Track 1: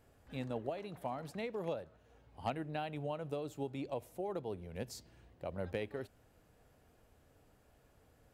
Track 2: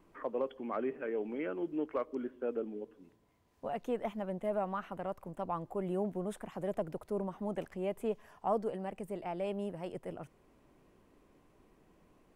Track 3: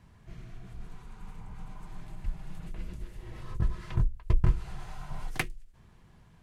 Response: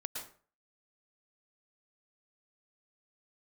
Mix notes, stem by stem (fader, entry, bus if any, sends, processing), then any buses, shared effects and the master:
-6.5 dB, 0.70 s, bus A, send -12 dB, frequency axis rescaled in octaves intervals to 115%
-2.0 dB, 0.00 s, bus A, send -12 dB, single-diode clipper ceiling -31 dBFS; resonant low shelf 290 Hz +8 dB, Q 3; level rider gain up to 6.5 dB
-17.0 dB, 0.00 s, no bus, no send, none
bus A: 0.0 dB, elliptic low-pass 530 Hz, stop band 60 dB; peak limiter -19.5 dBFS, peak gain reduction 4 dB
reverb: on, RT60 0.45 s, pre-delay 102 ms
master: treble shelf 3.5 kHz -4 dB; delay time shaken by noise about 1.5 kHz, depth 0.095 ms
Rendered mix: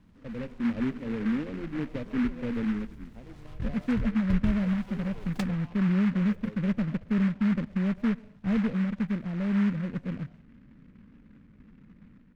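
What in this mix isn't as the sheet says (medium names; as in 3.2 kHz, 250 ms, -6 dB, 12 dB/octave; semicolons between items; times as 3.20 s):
stem 1: missing frequency axis rescaled in octaves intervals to 115%; stem 3 -17.0 dB -> -6.5 dB; reverb return -6.5 dB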